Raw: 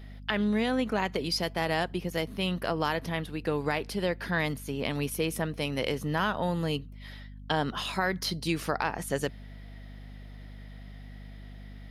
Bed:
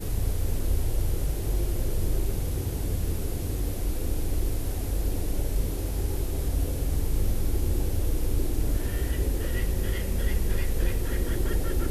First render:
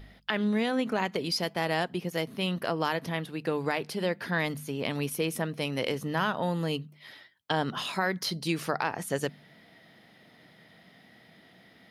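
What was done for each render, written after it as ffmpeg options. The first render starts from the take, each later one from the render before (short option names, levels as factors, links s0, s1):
-af "bandreject=f=50:t=h:w=4,bandreject=f=100:t=h:w=4,bandreject=f=150:t=h:w=4,bandreject=f=200:t=h:w=4,bandreject=f=250:t=h:w=4"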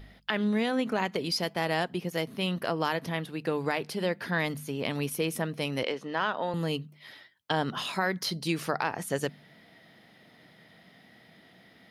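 -filter_complex "[0:a]asettb=1/sr,asplit=3[s0][s1][s2];[s0]atrim=end=5.834[s3];[s1]atrim=start=5.83:end=6.54,asetpts=PTS-STARTPTS,afade=t=in:d=0.004:c=qsin,afade=t=out:st=0.706:d=0.004:c=qsin,highpass=310,lowpass=4700[s4];[s2]atrim=start=6.536[s5];[s3][s4]acrossfade=d=0.004:c1=hsin:c2=qsin[s6];[s6][s5]acrossfade=d=0.004:c1=qsin:c2=hsin"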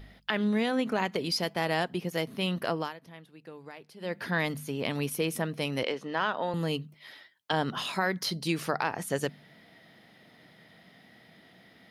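-filter_complex "[0:a]asettb=1/sr,asplit=3[s0][s1][s2];[s0]atrim=end=6.944[s3];[s1]atrim=start=6.94:end=7.53,asetpts=PTS-STARTPTS,afade=t=in:d=0.004:c=qsin,afade=t=out:st=0.586:d=0.004:c=qsin,highpass=f=260:p=1[s4];[s2]atrim=start=7.526[s5];[s3][s4]acrossfade=d=0.004:c1=hsin:c2=qsin[s6];[s6][s5]acrossfade=d=0.004:c1=qsin:c2=hsin,asplit=3[s7][s8][s9];[s7]atrim=end=2.94,asetpts=PTS-STARTPTS,afade=t=out:st=2.74:d=0.2:silence=0.149624[s10];[s8]atrim=start=2.94:end=3.99,asetpts=PTS-STARTPTS,volume=0.15[s11];[s9]atrim=start=3.99,asetpts=PTS-STARTPTS,afade=t=in:d=0.2:silence=0.149624[s12];[s10][s11][s12]concat=n=3:v=0:a=1"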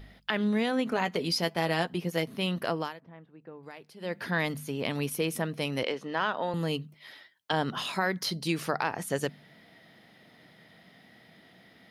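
-filter_complex "[0:a]asettb=1/sr,asplit=3[s0][s1][s2];[s0]atrim=end=0.904[s3];[s1]atrim=start=0.9:end=2.24,asetpts=PTS-STARTPTS,afade=t=in:d=0.004:c=qsin,afade=t=out:st=1.336:d=0.004:c=qsin,asplit=2[s4][s5];[s5]adelay=12,volume=0.376[s6];[s4][s6]amix=inputs=2:normalize=0,atrim=end_sample=59094[s7];[s2]atrim=start=2.236[s8];[s3][s7]acrossfade=d=0.004:c1=hsin:c2=qsin[s9];[s9][s8]acrossfade=d=0.004:c1=qsin:c2=hsin,asettb=1/sr,asplit=3[s10][s11][s12];[s10]atrim=end=3.004[s13];[s11]atrim=start=3:end=3.63,asetpts=PTS-STARTPTS,afade=t=in:d=0.004:c=qsin,afade=t=out:st=0.626:d=0.004:c=qsin,lowpass=1500[s14];[s12]atrim=start=3.626[s15];[s13][s14]acrossfade=d=0.004:c1=hsin:c2=qsin[s16];[s16][s15]acrossfade=d=0.004:c1=qsin:c2=hsin"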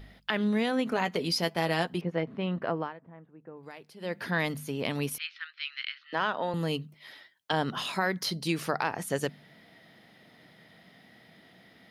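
-filter_complex "[0:a]asettb=1/sr,asplit=3[s0][s1][s2];[s0]atrim=end=2.014[s3];[s1]atrim=start=2.01:end=3.57,asetpts=PTS-STARTPTS,afade=t=in:d=0.004:c=qsin,afade=t=out:st=1.556:d=0.004:c=qsin,lowpass=1800[s4];[s2]atrim=start=3.566[s5];[s3][s4]acrossfade=d=0.004:c1=hsin:c2=qsin[s6];[s6][s5]acrossfade=d=0.004:c1=qsin:c2=hsin,asettb=1/sr,asplit=3[s7][s8][s9];[s7]atrim=end=5.184[s10];[s8]atrim=start=5.18:end=6.13,asetpts=PTS-STARTPTS,afade=t=in:d=0.004:c=qsin,afade=t=out:st=0.946:d=0.004:c=qsin,asuperpass=centerf=2500:order=12:qfactor=0.77[s11];[s9]atrim=start=6.126[s12];[s10][s11]acrossfade=d=0.004:c1=hsin:c2=qsin[s13];[s13][s12]acrossfade=d=0.004:c1=qsin:c2=hsin"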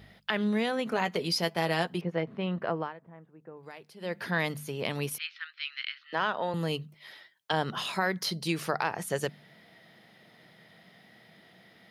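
-af "highpass=86,equalizer=f=270:t=o:w=0.21:g=-9.5"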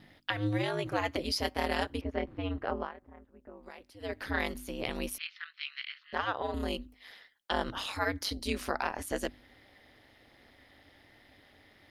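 -af "aeval=exprs='val(0)*sin(2*PI*100*n/s)':c=same"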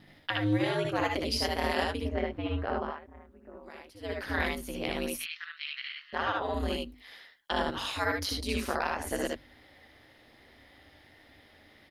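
-af "aecho=1:1:62|75:0.562|0.668"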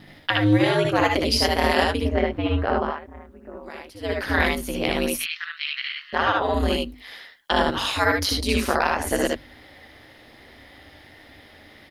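-af "volume=2.99"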